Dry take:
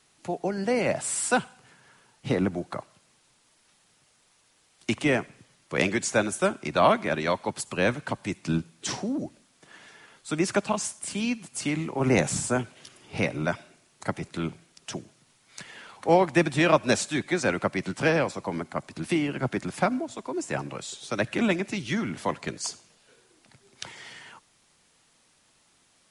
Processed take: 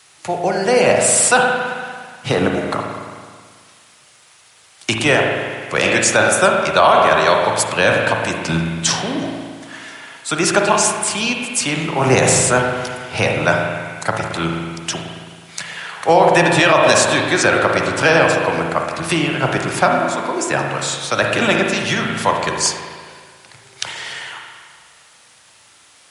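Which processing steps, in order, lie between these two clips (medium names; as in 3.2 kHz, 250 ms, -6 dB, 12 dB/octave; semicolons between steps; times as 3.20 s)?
high-pass 90 Hz; peaking EQ 240 Hz -13 dB 1.9 oct; spring tank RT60 1.8 s, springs 36/54 ms, chirp 50 ms, DRR 1.5 dB; dynamic bell 2.1 kHz, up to -8 dB, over -49 dBFS, Q 5.4; loudness maximiser +16 dB; trim -1 dB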